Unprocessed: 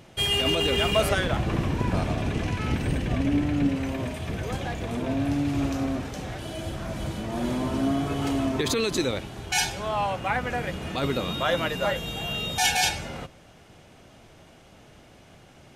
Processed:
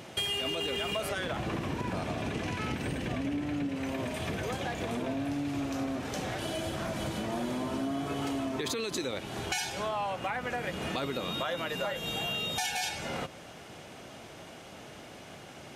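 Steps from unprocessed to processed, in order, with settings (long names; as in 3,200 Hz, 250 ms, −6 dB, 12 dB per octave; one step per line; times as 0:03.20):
high-pass filter 210 Hz 6 dB per octave
in parallel at +2 dB: brickwall limiter −19 dBFS, peak gain reduction 8.5 dB
on the sum: downward compressor, threshold −30 dBFS, peak gain reduction 15 dB
level −1 dB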